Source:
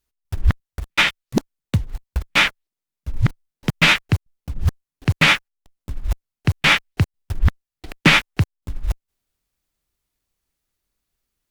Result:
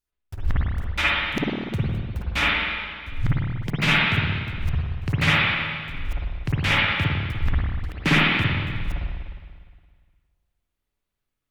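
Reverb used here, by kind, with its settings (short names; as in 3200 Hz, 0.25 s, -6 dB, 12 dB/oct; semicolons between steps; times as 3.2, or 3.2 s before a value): spring tank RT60 1.8 s, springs 51/58 ms, chirp 75 ms, DRR -7 dB; gain -10 dB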